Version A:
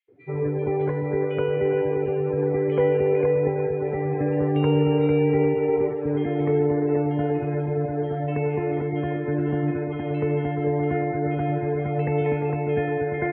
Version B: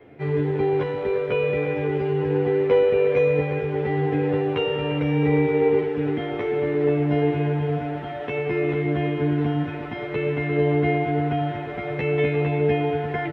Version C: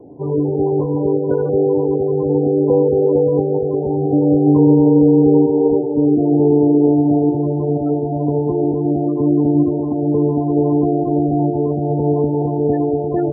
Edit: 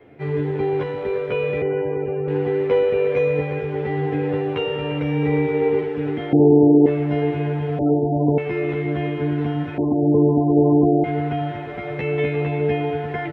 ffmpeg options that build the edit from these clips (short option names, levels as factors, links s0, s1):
-filter_complex "[2:a]asplit=3[s0][s1][s2];[1:a]asplit=5[s3][s4][s5][s6][s7];[s3]atrim=end=1.622[s8];[0:a]atrim=start=1.618:end=2.282[s9];[s4]atrim=start=2.278:end=6.332[s10];[s0]atrim=start=6.328:end=6.862[s11];[s5]atrim=start=6.858:end=7.792[s12];[s1]atrim=start=7.788:end=8.382[s13];[s6]atrim=start=8.378:end=9.782[s14];[s2]atrim=start=9.778:end=11.042[s15];[s7]atrim=start=11.038[s16];[s8][s9]acrossfade=d=0.004:c1=hsin:c2=hsin[s17];[s17][s10]acrossfade=d=0.004:c1=hsin:c2=hsin[s18];[s18][s11]acrossfade=d=0.004:c1=hsin:c2=hsin[s19];[s19][s12]acrossfade=d=0.004:c1=hsin:c2=hsin[s20];[s20][s13]acrossfade=d=0.004:c1=hsin:c2=hsin[s21];[s21][s14]acrossfade=d=0.004:c1=hsin:c2=hsin[s22];[s22][s15]acrossfade=d=0.004:c1=hsin:c2=hsin[s23];[s23][s16]acrossfade=d=0.004:c1=hsin:c2=hsin"